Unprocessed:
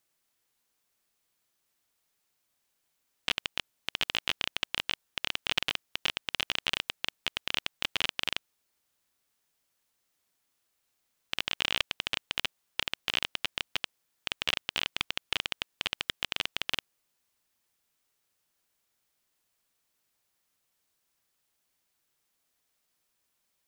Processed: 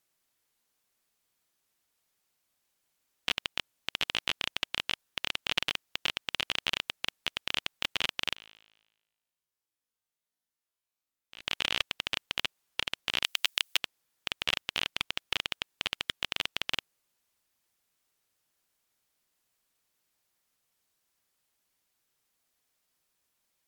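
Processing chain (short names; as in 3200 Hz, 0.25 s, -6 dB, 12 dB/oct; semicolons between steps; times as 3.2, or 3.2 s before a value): 8.35–11.41 resonator 54 Hz, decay 1.1 s, harmonics all, mix 100%; 13.23–13.77 tilt +3.5 dB/oct; MP3 112 kbps 48000 Hz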